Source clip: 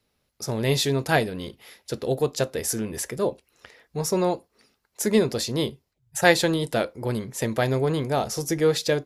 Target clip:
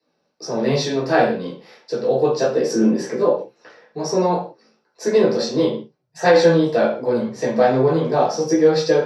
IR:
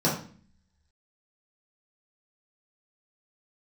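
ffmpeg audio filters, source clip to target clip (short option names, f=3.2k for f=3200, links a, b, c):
-filter_complex "[0:a]acrossover=split=310 6200:gain=0.126 1 0.0794[a][b][c];[a][b][c]amix=inputs=3:normalize=0,flanger=delay=15.5:depth=2.4:speed=2.7,asettb=1/sr,asplit=3[d][e][f];[d]atrim=end=2.494[g];[e]atrim=start=2.49:end=3.16,asetpts=PTS-STARTPTS,afade=t=in:d=0.004:c=qsin,afade=t=out:st=0.666:d=0.004:c=qsin,equalizer=f=260:w=0.6:g=7.5[h];[f]atrim=start=3.156[i];[g][h]acrossfade=d=0.004:c1=hsin:c2=qsin[j];[j][i]acrossfade=d=0.004:c1=qsin:c2=hsin[k];[1:a]atrim=start_sample=2205,afade=t=out:st=0.24:d=0.01,atrim=end_sample=11025[l];[k][l]afir=irnorm=-1:irlink=0,alimiter=level_in=-1.5dB:limit=-1dB:release=50:level=0:latency=1,volume=-3dB"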